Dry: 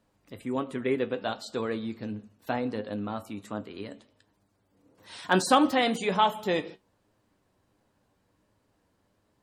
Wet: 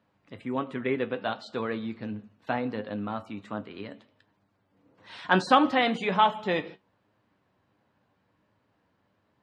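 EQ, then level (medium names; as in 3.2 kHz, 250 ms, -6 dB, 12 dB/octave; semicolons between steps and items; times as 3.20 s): band-pass 110–3100 Hz; peaking EQ 380 Hz -5 dB 1.8 oct; +3.5 dB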